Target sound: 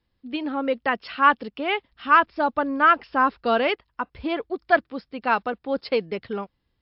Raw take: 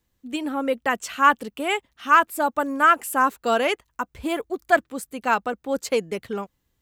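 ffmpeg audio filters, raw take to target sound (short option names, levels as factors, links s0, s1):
-filter_complex "[0:a]asettb=1/sr,asplit=3[s0][s1][s2];[s0]atrim=end=1.924[s3];[s1]atrim=start=1.92:end=3.7,asetpts=PTS-STARTPTS,afade=t=in:d=0.004:c=qsin,afade=t=out:st=1.776:d=0.004:c=qsin,lowshelf=f=110:g=11[s4];[s2]atrim=start=3.696[s5];[s3][s4]acrossfade=d=0.004:c1=hsin:c2=qsin[s6];[s6][s5]acrossfade=d=0.004:c1=qsin:c2=hsin" -ar 12000 -c:a libmp3lame -b:a 56k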